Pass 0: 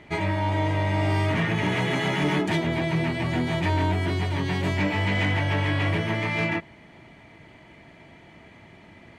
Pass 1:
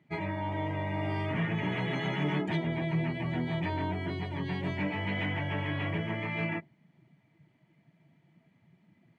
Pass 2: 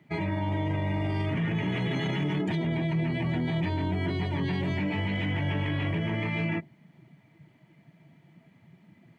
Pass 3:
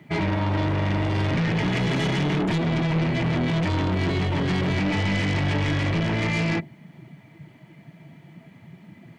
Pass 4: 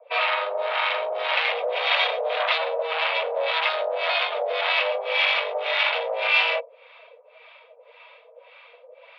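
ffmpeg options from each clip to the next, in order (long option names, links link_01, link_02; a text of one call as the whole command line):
ffmpeg -i in.wav -af "highpass=110,equalizer=frequency=150:width_type=o:width=0.66:gain=5.5,afftdn=noise_reduction=15:noise_floor=-36,volume=-8dB" out.wav
ffmpeg -i in.wav -filter_complex "[0:a]acrossover=split=410|3000[link_01][link_02][link_03];[link_02]acompressor=threshold=-42dB:ratio=6[link_04];[link_01][link_04][link_03]amix=inputs=3:normalize=0,alimiter=level_in=5dB:limit=-24dB:level=0:latency=1:release=15,volume=-5dB,volume=7.5dB" out.wav
ffmpeg -i in.wav -af "aeval=exprs='0.0891*(cos(1*acos(clip(val(0)/0.0891,-1,1)))-cos(1*PI/2))+0.0316*(cos(2*acos(clip(val(0)/0.0891,-1,1)))-cos(2*PI/2))+0.0158*(cos(4*acos(clip(val(0)/0.0891,-1,1)))-cos(4*PI/2))+0.0158*(cos(5*acos(clip(val(0)/0.0891,-1,1)))-cos(5*PI/2))':channel_layout=same,volume=4.5dB" out.wav
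ffmpeg -i in.wav -filter_complex "[0:a]highpass=frequency=220:width_type=q:width=0.5412,highpass=frequency=220:width_type=q:width=1.307,lowpass=frequency=3500:width_type=q:width=0.5176,lowpass=frequency=3500:width_type=q:width=0.7071,lowpass=frequency=3500:width_type=q:width=1.932,afreqshift=310,acrossover=split=710[link_01][link_02];[link_01]aeval=exprs='val(0)*(1-1/2+1/2*cos(2*PI*1.8*n/s))':channel_layout=same[link_03];[link_02]aeval=exprs='val(0)*(1-1/2-1/2*cos(2*PI*1.8*n/s))':channel_layout=same[link_04];[link_03][link_04]amix=inputs=2:normalize=0,highshelf=frequency=3000:gain=11.5,volume=6dB" out.wav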